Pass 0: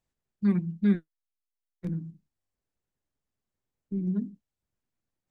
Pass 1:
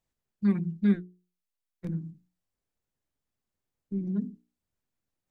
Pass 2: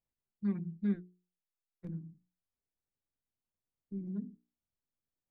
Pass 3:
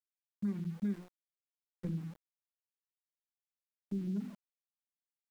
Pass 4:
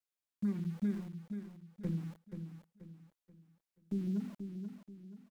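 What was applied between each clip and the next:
notches 60/120/180/240/300/360/420 Hz
high shelf 2000 Hz -8 dB; gain -8.5 dB
compressor 4:1, threshold -42 dBFS, peak gain reduction 13 dB; sample gate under -59.5 dBFS; gain +8 dB
vibrato 0.59 Hz 9.9 cents; on a send: feedback echo 0.482 s, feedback 37%, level -8 dB; on the sum: gain +1 dB

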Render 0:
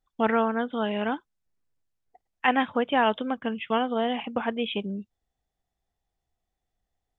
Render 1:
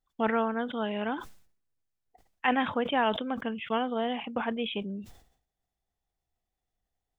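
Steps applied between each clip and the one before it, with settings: sustainer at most 100 dB/s; gain -4 dB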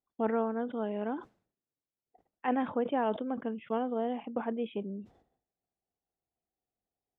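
band-pass 370 Hz, Q 0.79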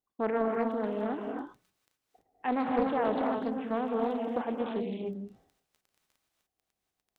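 crackle 13/s -49 dBFS; non-linear reverb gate 0.32 s rising, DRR 0.5 dB; Doppler distortion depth 0.36 ms

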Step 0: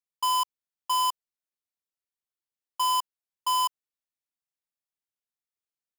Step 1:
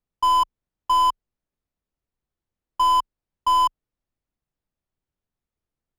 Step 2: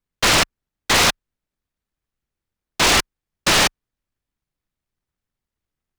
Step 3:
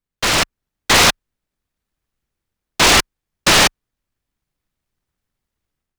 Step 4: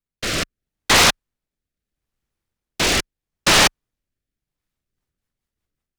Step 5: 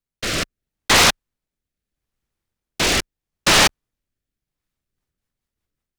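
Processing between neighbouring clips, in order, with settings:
tilt -4.5 dB/oct; gain +7.5 dB
noise-modulated delay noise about 1300 Hz, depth 0.34 ms; gain +2.5 dB
AGC gain up to 7.5 dB; gain -2 dB
rotary speaker horn 0.75 Hz, later 5.5 Hz, at 4.39; gain -1.5 dB
block floating point 7-bit

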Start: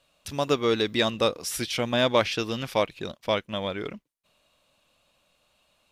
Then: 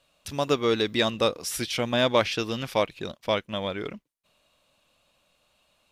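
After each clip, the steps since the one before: nothing audible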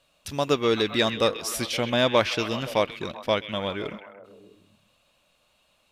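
delay with a stepping band-pass 0.13 s, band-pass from 2500 Hz, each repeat -0.7 oct, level -7.5 dB; gain +1 dB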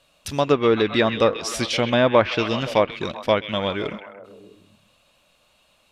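treble ducked by the level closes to 1900 Hz, closed at -17.5 dBFS; gain +5 dB

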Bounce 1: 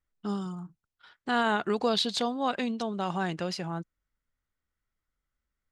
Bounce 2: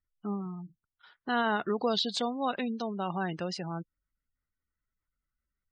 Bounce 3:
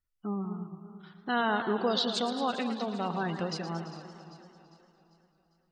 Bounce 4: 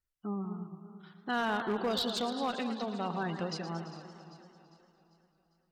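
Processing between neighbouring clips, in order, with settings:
spectral gate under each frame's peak -25 dB strong; gain -2 dB
echo with dull and thin repeats by turns 0.199 s, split 1400 Hz, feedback 69%, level -12.5 dB; warbling echo 0.112 s, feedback 74%, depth 143 cents, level -12 dB
one-sided clip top -26.5 dBFS, bottom -21 dBFS; gain -2.5 dB

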